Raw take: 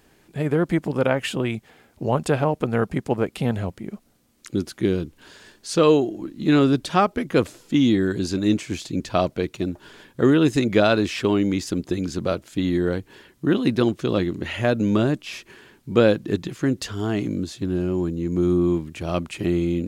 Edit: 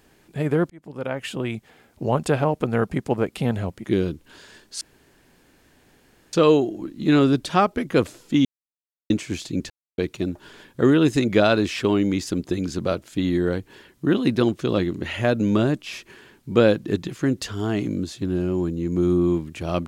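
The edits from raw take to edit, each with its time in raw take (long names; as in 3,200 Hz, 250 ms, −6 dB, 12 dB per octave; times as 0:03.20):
0:00.70–0:02.13: fade in equal-power
0:03.84–0:04.76: remove
0:05.73: splice in room tone 1.52 s
0:07.85–0:08.50: silence
0:09.10–0:09.38: silence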